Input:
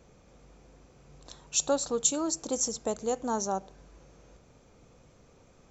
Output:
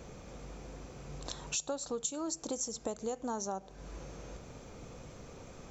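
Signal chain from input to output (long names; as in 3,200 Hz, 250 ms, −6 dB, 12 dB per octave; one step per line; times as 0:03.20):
downward compressor 5 to 1, threshold −45 dBFS, peak gain reduction 22 dB
level +9 dB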